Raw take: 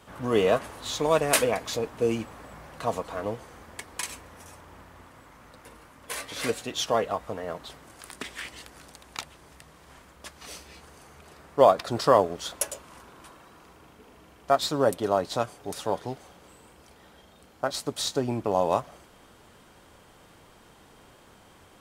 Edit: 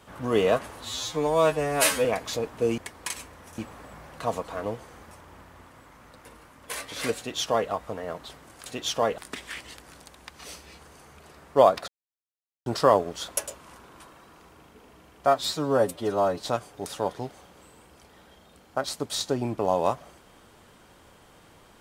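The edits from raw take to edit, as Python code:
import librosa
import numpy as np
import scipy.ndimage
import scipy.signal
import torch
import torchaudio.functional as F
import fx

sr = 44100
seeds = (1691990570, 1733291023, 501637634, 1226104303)

y = fx.edit(x, sr, fx.stretch_span(start_s=0.85, length_s=0.6, factor=2.0),
    fx.move(start_s=3.71, length_s=0.8, to_s=2.18),
    fx.duplicate(start_s=6.58, length_s=0.52, to_s=8.06),
    fx.cut(start_s=9.18, length_s=1.14),
    fx.insert_silence(at_s=11.9, length_s=0.78),
    fx.stretch_span(start_s=14.51, length_s=0.75, factor=1.5), tone=tone)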